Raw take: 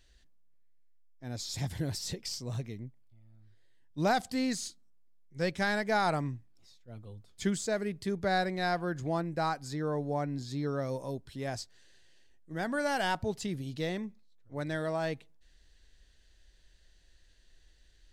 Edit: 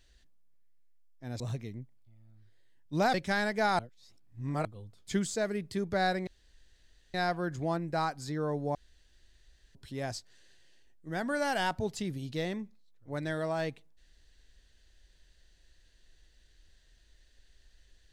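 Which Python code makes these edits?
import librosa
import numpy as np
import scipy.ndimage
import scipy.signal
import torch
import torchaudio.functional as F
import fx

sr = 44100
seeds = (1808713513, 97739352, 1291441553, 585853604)

y = fx.edit(x, sr, fx.cut(start_s=1.4, length_s=1.05),
    fx.cut(start_s=4.19, length_s=1.26),
    fx.reverse_span(start_s=6.1, length_s=0.86),
    fx.insert_room_tone(at_s=8.58, length_s=0.87),
    fx.room_tone_fill(start_s=10.19, length_s=1.0), tone=tone)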